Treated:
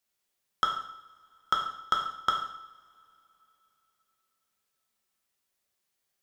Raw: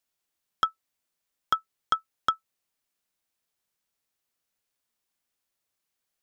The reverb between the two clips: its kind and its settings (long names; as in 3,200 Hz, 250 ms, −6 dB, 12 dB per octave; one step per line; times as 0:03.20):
coupled-rooms reverb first 0.68 s, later 3.3 s, from −25 dB, DRR 0 dB
level −1 dB